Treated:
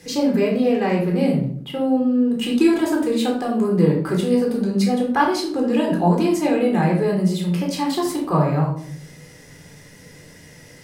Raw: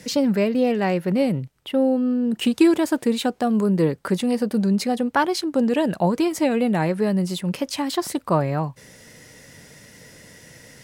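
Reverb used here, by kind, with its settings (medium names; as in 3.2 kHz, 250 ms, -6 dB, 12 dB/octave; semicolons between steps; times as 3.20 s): simulated room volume 740 m³, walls furnished, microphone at 3.9 m; trim -4.5 dB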